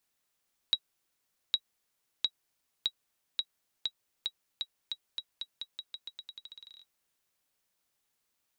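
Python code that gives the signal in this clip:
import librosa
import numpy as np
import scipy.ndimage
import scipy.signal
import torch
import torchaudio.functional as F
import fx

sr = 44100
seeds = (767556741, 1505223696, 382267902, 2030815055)

y = fx.bouncing_ball(sr, first_gap_s=0.81, ratio=0.87, hz=3850.0, decay_ms=60.0, level_db=-14.0)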